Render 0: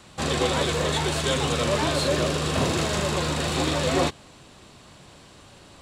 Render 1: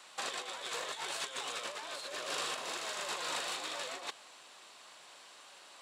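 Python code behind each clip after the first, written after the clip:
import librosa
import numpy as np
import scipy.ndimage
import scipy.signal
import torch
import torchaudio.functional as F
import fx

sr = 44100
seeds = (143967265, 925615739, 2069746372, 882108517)

y = scipy.signal.sosfilt(scipy.signal.butter(2, 770.0, 'highpass', fs=sr, output='sos'), x)
y = fx.over_compress(y, sr, threshold_db=-32.0, ratio=-0.5)
y = y * librosa.db_to_amplitude(-7.0)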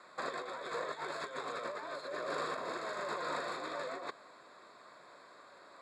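y = scipy.signal.lfilter(np.full(15, 1.0 / 15), 1.0, x)
y = fx.peak_eq(y, sr, hz=820.0, db=-11.5, octaves=0.21)
y = y * librosa.db_to_amplitude(6.0)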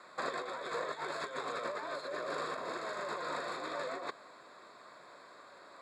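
y = fx.rider(x, sr, range_db=10, speed_s=0.5)
y = y * librosa.db_to_amplitude(1.0)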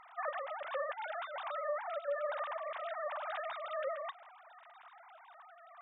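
y = fx.sine_speech(x, sr)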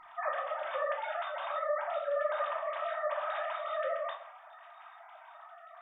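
y = fx.room_shoebox(x, sr, seeds[0], volume_m3=550.0, walls='furnished', distance_m=2.8)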